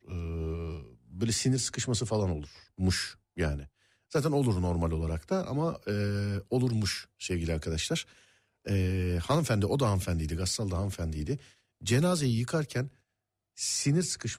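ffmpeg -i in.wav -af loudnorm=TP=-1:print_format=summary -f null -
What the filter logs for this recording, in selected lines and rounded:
Input Integrated:    -30.6 LUFS
Input True Peak:     -16.7 dBTP
Input LRA:             1.5 LU
Input Threshold:     -41.0 LUFS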